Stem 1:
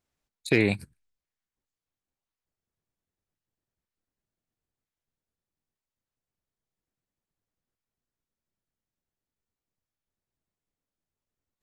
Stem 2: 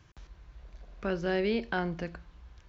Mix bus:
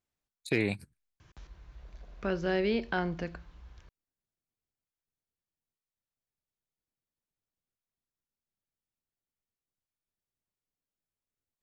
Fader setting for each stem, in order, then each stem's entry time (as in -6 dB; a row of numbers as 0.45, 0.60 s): -6.5, 0.0 dB; 0.00, 1.20 s